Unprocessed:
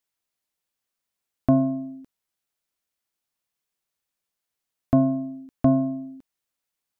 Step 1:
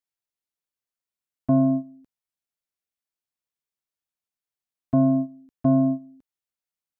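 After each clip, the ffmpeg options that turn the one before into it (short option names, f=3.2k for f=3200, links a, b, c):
-af "alimiter=limit=-20dB:level=0:latency=1:release=187,equalizer=f=77:w=0.55:g=2.5,agate=range=-15dB:threshold=-29dB:ratio=16:detection=peak,volume=5.5dB"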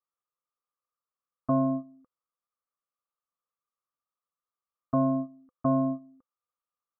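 -af "lowpass=f=1.2k:t=q:w=15,equalizer=f=510:w=6.5:g=12,volume=-7.5dB"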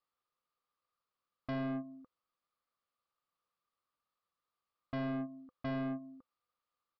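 -af "acompressor=threshold=-38dB:ratio=2,aresample=11025,asoftclip=type=tanh:threshold=-39dB,aresample=44100,volume=4.5dB"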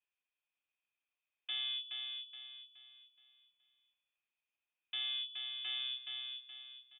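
-af "aecho=1:1:422|844|1266|1688|2110:0.562|0.208|0.077|0.0285|0.0105,lowpass=f=3.1k:t=q:w=0.5098,lowpass=f=3.1k:t=q:w=0.6013,lowpass=f=3.1k:t=q:w=0.9,lowpass=f=3.1k:t=q:w=2.563,afreqshift=-3700,volume=-2.5dB"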